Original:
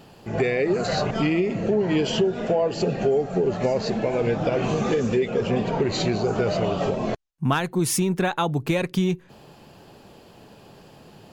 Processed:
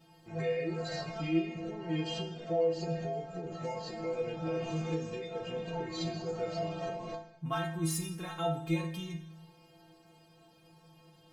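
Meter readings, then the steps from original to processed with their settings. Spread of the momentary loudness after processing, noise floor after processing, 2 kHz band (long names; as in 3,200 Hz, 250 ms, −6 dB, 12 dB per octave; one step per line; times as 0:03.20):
9 LU, −61 dBFS, −13.5 dB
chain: stiff-string resonator 160 Hz, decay 0.52 s, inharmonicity 0.008
coupled-rooms reverb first 0.85 s, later 2.4 s, DRR 8 dB
level +1.5 dB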